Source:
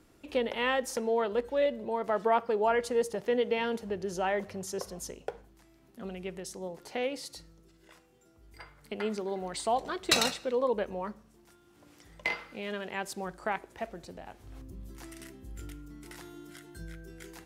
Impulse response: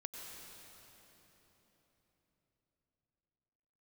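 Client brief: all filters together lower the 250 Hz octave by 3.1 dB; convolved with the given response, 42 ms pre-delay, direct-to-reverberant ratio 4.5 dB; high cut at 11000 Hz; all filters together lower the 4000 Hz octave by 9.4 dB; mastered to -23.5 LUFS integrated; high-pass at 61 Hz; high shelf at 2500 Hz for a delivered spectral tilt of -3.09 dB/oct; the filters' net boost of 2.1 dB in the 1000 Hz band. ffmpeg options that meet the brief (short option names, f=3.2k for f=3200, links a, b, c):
-filter_complex "[0:a]highpass=61,lowpass=11k,equalizer=f=250:t=o:g=-4,equalizer=f=1k:t=o:g=4.5,highshelf=f=2.5k:g=-9,equalizer=f=4k:t=o:g=-4,asplit=2[a][b];[1:a]atrim=start_sample=2205,adelay=42[c];[b][c]afir=irnorm=-1:irlink=0,volume=-2.5dB[d];[a][d]amix=inputs=2:normalize=0,volume=8dB"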